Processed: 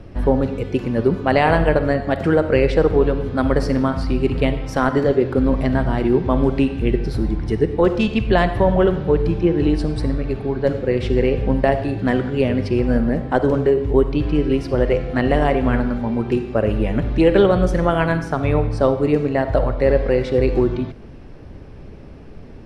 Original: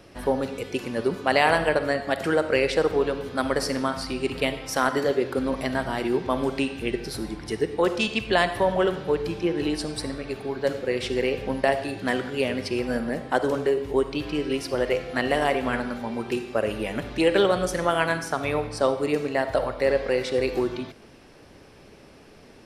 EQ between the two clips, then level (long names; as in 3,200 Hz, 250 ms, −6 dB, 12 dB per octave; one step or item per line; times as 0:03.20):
RIAA equalisation playback
+3.0 dB